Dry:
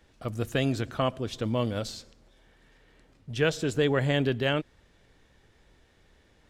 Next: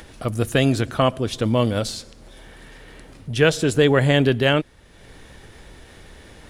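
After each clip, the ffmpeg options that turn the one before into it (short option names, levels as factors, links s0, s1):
-filter_complex "[0:a]equalizer=f=9800:w=4.4:g=11,asplit=2[s0][s1];[s1]acompressor=mode=upward:threshold=0.02:ratio=2.5,volume=0.794[s2];[s0][s2]amix=inputs=2:normalize=0,volume=1.5"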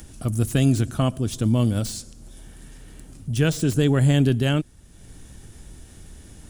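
-filter_complex "[0:a]equalizer=f=500:t=o:w=1:g=-11,equalizer=f=1000:t=o:w=1:g=-8,equalizer=f=2000:t=o:w=1:g=-11,equalizer=f=4000:t=o:w=1:g=-8,equalizer=f=8000:t=o:w=1:g=5,acrossover=split=5100[s0][s1];[s1]aeval=exprs='0.0211*(abs(mod(val(0)/0.0211+3,4)-2)-1)':c=same[s2];[s0][s2]amix=inputs=2:normalize=0,volume=1.41"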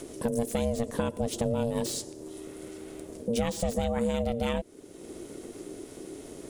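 -af "acompressor=threshold=0.0562:ratio=10,aeval=exprs='val(0)*sin(2*PI*350*n/s)':c=same,volume=1.41"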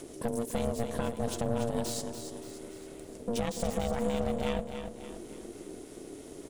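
-filter_complex "[0:a]aeval=exprs='(tanh(14.1*val(0)+0.65)-tanh(0.65))/14.1':c=same,asplit=2[s0][s1];[s1]aecho=0:1:287|574|861|1148|1435:0.376|0.177|0.083|0.039|0.0183[s2];[s0][s2]amix=inputs=2:normalize=0"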